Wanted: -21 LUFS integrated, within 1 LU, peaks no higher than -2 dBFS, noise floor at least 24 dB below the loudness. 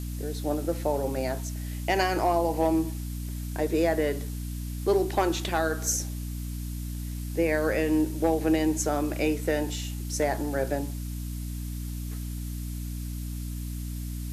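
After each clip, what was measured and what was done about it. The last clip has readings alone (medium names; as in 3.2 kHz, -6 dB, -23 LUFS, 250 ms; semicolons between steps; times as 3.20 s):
hum 60 Hz; highest harmonic 300 Hz; hum level -31 dBFS; noise floor -34 dBFS; noise floor target -53 dBFS; loudness -29.0 LUFS; peak level -13.0 dBFS; loudness target -21.0 LUFS
-> hum notches 60/120/180/240/300 Hz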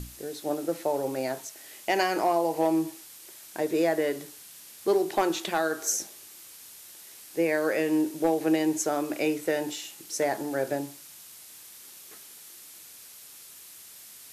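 hum not found; noise floor -48 dBFS; noise floor target -52 dBFS
-> noise reduction 6 dB, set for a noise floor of -48 dBFS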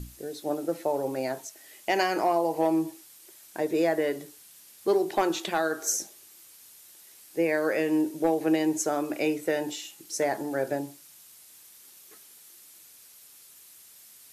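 noise floor -53 dBFS; loudness -28.0 LUFS; peak level -14.0 dBFS; loudness target -21.0 LUFS
-> trim +7 dB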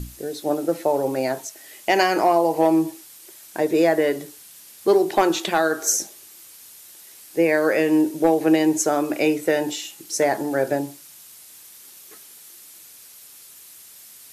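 loudness -21.0 LUFS; peak level -7.0 dBFS; noise floor -46 dBFS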